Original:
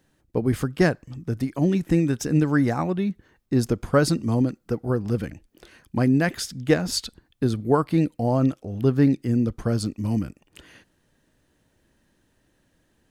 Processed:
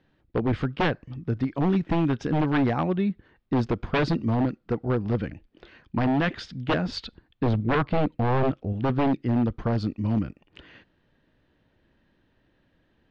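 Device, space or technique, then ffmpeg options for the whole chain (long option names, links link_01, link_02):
synthesiser wavefolder: -filter_complex "[0:a]asettb=1/sr,asplit=3[link_01][link_02][link_03];[link_01]atrim=end=7.464[link_04];[link_02]atrim=start=7.46:end=8.73,asetpts=PTS-STARTPTS,afade=type=in:duration=0.004:curve=qsin,afade=type=out:start_time=1.266:duration=0.004:curve=qsin,bass=frequency=250:gain=6,treble=frequency=4000:gain=-3[link_05];[link_03]atrim=start=8.726[link_06];[link_04][link_05]acrossfade=duration=0.004:curve1=hsin:curve2=qsin[link_07];[link_07][link_06]acrossfade=duration=0.004:curve1=qsin:curve2=hsin,aeval=exprs='0.15*(abs(mod(val(0)/0.15+3,4)-2)-1)':channel_layout=same,lowpass=frequency=3900:width=0.5412,lowpass=frequency=3900:width=1.3066"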